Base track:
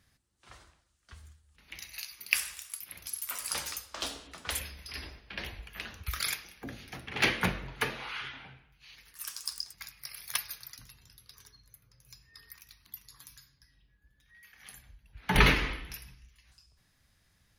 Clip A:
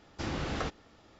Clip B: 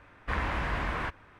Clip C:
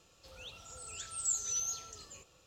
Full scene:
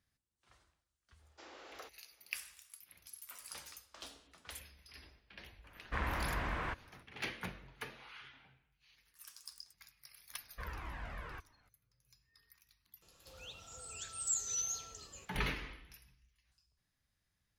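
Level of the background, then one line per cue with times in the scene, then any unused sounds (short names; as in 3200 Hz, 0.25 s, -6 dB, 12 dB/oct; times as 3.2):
base track -14.5 dB
1.19 add A -15.5 dB + HPF 390 Hz 24 dB/oct
5.64 add B -6 dB
10.3 add B -11 dB + cascading flanger falling 1.7 Hz
13.02 add C -2 dB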